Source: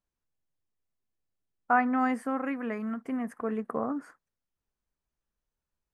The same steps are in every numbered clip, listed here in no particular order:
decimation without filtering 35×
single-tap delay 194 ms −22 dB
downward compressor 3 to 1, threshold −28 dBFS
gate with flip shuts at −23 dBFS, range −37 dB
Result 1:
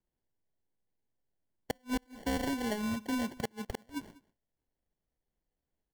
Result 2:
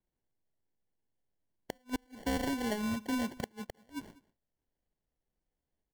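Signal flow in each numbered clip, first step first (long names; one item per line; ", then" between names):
decimation without filtering, then downward compressor, then gate with flip, then single-tap delay
downward compressor, then gate with flip, then decimation without filtering, then single-tap delay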